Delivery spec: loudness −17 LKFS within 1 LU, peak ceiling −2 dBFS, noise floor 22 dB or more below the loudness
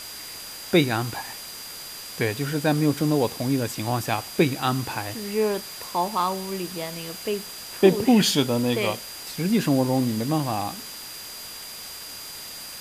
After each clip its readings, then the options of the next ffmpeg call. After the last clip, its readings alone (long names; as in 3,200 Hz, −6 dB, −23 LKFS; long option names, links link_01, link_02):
interfering tone 4,800 Hz; level of the tone −40 dBFS; background noise floor −38 dBFS; target noise floor −48 dBFS; integrated loudness −25.5 LKFS; sample peak −4.5 dBFS; target loudness −17.0 LKFS
→ -af "bandreject=frequency=4800:width=30"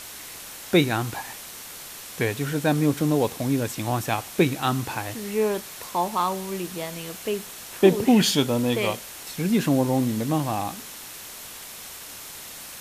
interfering tone none found; background noise floor −40 dBFS; target noise floor −47 dBFS
→ -af "afftdn=noise_reduction=7:noise_floor=-40"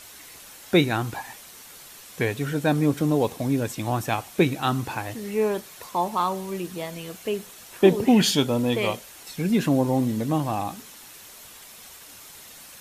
background noise floor −46 dBFS; target noise floor −47 dBFS
→ -af "afftdn=noise_reduction=6:noise_floor=-46"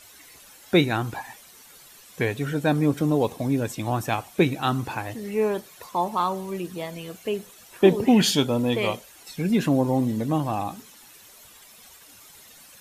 background noise floor −50 dBFS; integrated loudness −24.5 LKFS; sample peak −4.5 dBFS; target loudness −17.0 LKFS
→ -af "volume=7.5dB,alimiter=limit=-2dB:level=0:latency=1"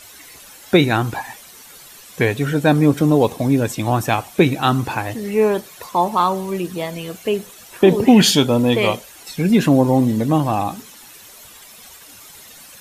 integrated loudness −17.5 LKFS; sample peak −2.0 dBFS; background noise floor −42 dBFS